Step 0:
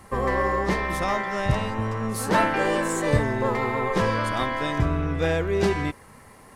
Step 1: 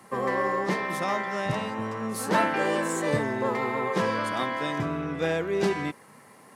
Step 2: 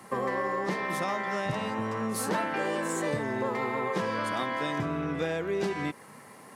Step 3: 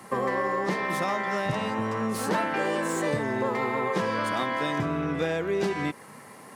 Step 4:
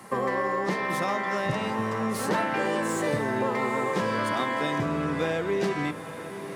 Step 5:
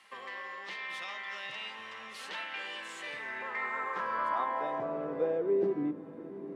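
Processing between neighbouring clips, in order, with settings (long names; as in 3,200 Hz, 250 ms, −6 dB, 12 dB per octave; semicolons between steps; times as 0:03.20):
high-pass filter 140 Hz 24 dB per octave; level −2.5 dB
downward compressor 4 to 1, threshold −30 dBFS, peak gain reduction 10 dB; level +2.5 dB
slew-rate limiting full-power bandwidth 96 Hz; level +3 dB
feedback delay with all-pass diffusion 908 ms, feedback 55%, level −12 dB
band-pass filter sweep 3,000 Hz → 300 Hz, 0:02.95–0:05.88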